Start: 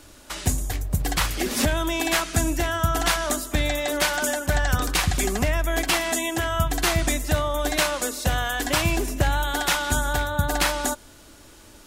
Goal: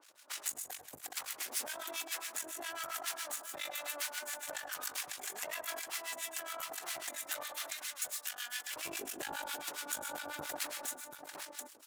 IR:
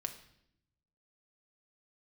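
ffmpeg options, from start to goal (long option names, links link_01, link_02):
-filter_complex "[0:a]aeval=exprs='max(val(0),0)':channel_layout=same,asetnsamples=nb_out_samples=441:pad=0,asendcmd='7.43 highpass f 1500;8.76 highpass f 370',highpass=700,aecho=1:1:96|107|181|735:0.266|0.237|0.178|0.282,alimiter=limit=-22.5dB:level=0:latency=1:release=494,acrossover=split=1100[link_01][link_02];[link_01]aeval=exprs='val(0)*(1-1/2+1/2*cos(2*PI*7.3*n/s))':channel_layout=same[link_03];[link_02]aeval=exprs='val(0)*(1-1/2-1/2*cos(2*PI*7.3*n/s))':channel_layout=same[link_04];[link_03][link_04]amix=inputs=2:normalize=0,adynamicequalizer=threshold=0.00178:dfrequency=6500:dqfactor=0.7:tfrequency=6500:tqfactor=0.7:attack=5:release=100:ratio=0.375:range=3:mode=boostabove:tftype=highshelf,volume=-2dB"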